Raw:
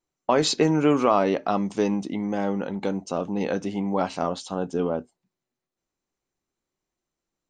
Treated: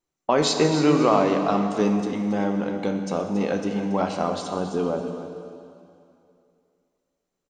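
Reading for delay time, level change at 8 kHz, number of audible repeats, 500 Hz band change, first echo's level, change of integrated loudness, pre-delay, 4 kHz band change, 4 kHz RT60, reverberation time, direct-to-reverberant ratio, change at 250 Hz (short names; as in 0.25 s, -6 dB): 0.278 s, +1.5 dB, 1, +1.5 dB, -12.5 dB, +1.5 dB, 7 ms, +1.5 dB, 2.4 s, 2.6 s, 4.0 dB, +2.0 dB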